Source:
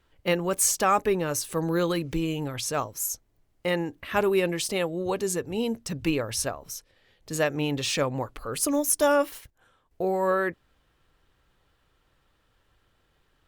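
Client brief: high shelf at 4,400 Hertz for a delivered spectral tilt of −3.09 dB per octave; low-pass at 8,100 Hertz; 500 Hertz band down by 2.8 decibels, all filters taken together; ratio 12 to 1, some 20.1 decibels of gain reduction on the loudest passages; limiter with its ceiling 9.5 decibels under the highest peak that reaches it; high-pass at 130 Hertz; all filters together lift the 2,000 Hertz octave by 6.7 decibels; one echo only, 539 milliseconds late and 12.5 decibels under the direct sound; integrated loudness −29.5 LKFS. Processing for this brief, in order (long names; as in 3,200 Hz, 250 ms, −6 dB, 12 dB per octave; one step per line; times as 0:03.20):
high-pass filter 130 Hz
low-pass filter 8,100 Hz
parametric band 500 Hz −4 dB
parametric band 2,000 Hz +7.5 dB
high-shelf EQ 4,400 Hz +7 dB
downward compressor 12 to 1, threshold −37 dBFS
brickwall limiter −33 dBFS
single-tap delay 539 ms −12.5 dB
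level +13.5 dB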